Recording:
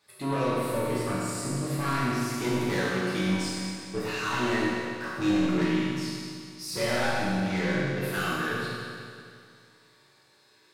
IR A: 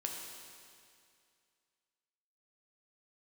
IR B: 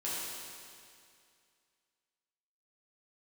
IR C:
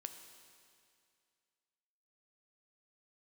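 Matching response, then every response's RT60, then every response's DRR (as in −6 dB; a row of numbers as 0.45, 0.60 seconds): B; 2.3, 2.3, 2.3 seconds; 0.0, −9.0, 6.5 decibels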